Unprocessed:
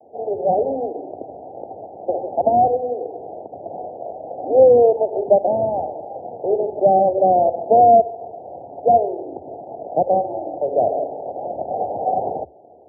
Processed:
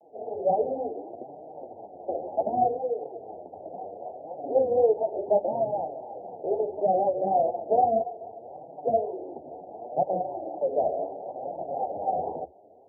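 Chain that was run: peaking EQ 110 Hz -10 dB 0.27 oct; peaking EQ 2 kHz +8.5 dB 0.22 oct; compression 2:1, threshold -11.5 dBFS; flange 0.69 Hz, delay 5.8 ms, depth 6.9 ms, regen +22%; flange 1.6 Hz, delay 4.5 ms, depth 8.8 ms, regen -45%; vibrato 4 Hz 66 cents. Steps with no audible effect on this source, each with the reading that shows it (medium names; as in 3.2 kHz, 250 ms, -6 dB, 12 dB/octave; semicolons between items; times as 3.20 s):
peaking EQ 2 kHz: input has nothing above 910 Hz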